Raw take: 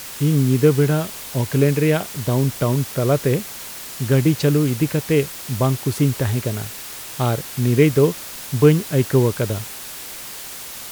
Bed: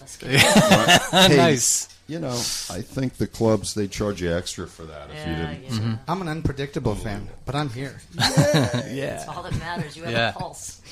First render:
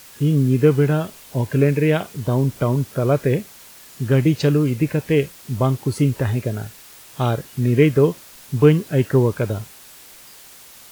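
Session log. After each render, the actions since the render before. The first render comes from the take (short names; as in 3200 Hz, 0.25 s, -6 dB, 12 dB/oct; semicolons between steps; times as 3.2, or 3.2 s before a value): noise print and reduce 10 dB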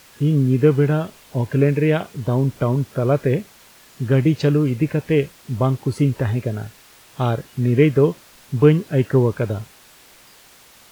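high shelf 5600 Hz -8.5 dB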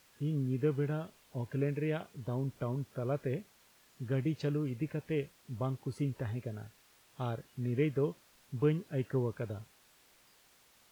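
gain -16.5 dB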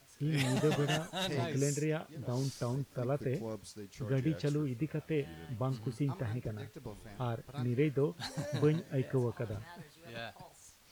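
add bed -22 dB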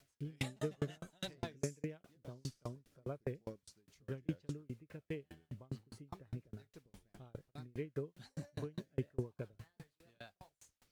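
rotary speaker horn 6 Hz; dB-ramp tremolo decaying 4.9 Hz, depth 38 dB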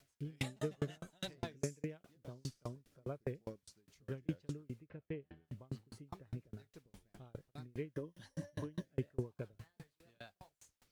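4.86–5.48 air absorption 360 m; 7.93–8.85 ripple EQ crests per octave 1.2, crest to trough 9 dB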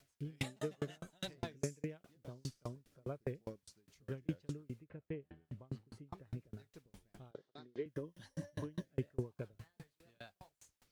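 0.43–0.99 low shelf 100 Hz -12 dB; 4.84–6.18 high shelf 3900 Hz -7.5 dB; 7.31–7.86 speaker cabinet 280–5600 Hz, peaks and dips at 400 Hz +5 dB, 2500 Hz -9 dB, 3500 Hz +6 dB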